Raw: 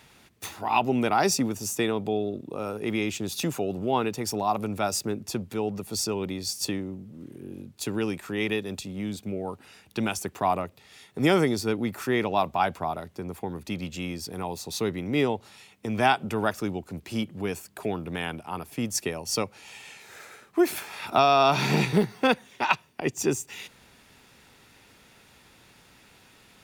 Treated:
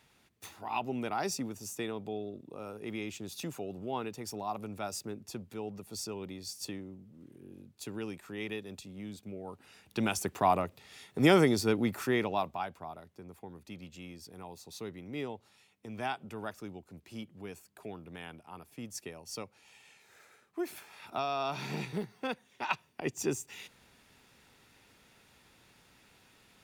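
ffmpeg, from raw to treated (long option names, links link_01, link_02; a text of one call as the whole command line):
ffmpeg -i in.wav -af "volume=5.5dB,afade=type=in:start_time=9.43:duration=0.83:silence=0.334965,afade=type=out:start_time=11.86:duration=0.81:silence=0.237137,afade=type=in:start_time=22.46:duration=0.42:silence=0.446684" out.wav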